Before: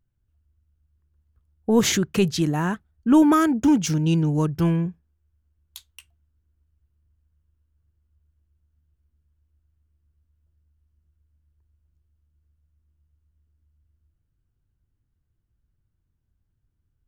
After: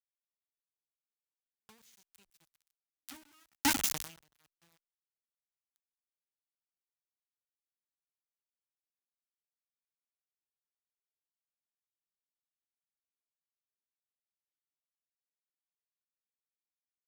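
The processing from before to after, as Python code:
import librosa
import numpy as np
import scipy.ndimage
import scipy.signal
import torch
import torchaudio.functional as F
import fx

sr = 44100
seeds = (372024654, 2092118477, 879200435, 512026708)

p1 = x + 0.5 * 10.0 ** (-24.5 / 20.0) * np.diff(np.sign(x), prepend=np.sign(x[:1]))
p2 = fx.high_shelf(p1, sr, hz=3300.0, db=3.0)
p3 = fx.hum_notches(p2, sr, base_hz=60, count=9)
p4 = p3 + fx.echo_single(p3, sr, ms=131, db=-13.0, dry=0)
p5 = np.where(np.abs(p4) >= 10.0 ** (-16.0 / 20.0), p4, 0.0)
p6 = scipy.signal.sosfilt(scipy.signal.butter(2, 43.0, 'highpass', fs=sr, output='sos'), p5)
p7 = fx.tone_stack(p6, sr, knobs='5-5-5')
p8 = fx.over_compress(p7, sr, threshold_db=-32.0, ratio=-1.0)
p9 = p7 + F.gain(torch.from_numpy(p8), 0.5).numpy()
p10 = fx.buffer_glitch(p9, sr, at_s=(2.28,), block=128, repeats=10)
p11 = fx.end_taper(p10, sr, db_per_s=130.0)
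y = F.gain(torch.from_numpy(p11), 1.5).numpy()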